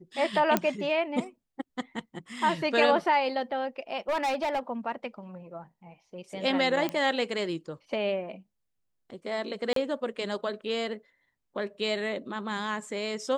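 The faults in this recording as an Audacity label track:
0.570000	0.570000	pop -9 dBFS
4.090000	4.590000	clipped -24.5 dBFS
6.890000	6.890000	pop -16 dBFS
9.730000	9.760000	dropout 33 ms

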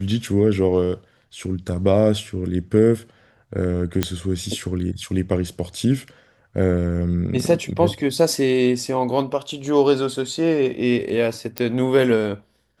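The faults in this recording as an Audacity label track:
4.030000	4.030000	pop -5 dBFS
11.580000	11.580000	pop -6 dBFS

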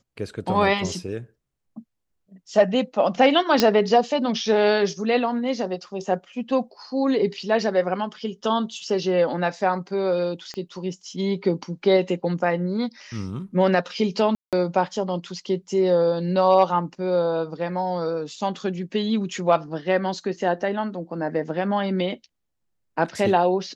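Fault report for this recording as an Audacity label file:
3.600000	3.600000	pop -3 dBFS
10.540000	10.540000	pop -21 dBFS
14.350000	14.530000	dropout 177 ms

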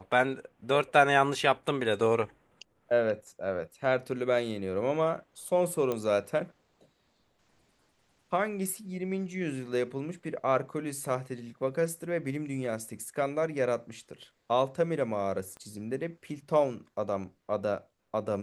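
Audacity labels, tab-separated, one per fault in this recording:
5.920000	5.920000	pop -18 dBFS
15.570000	15.570000	pop -32 dBFS

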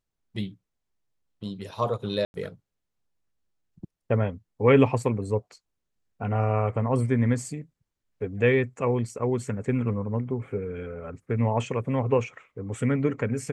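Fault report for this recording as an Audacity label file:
2.250000	2.340000	dropout 91 ms

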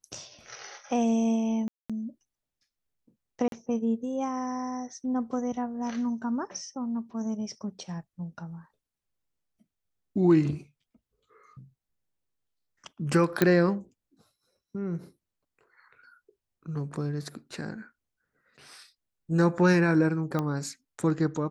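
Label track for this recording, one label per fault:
1.680000	1.900000	dropout 216 ms
3.480000	3.520000	dropout 42 ms
13.420000	13.420000	pop -8 dBFS
20.390000	20.390000	pop -17 dBFS

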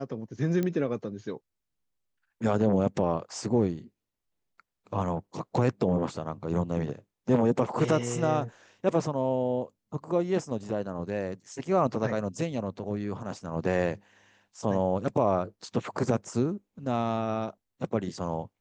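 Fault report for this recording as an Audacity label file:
0.630000	0.630000	pop -17 dBFS

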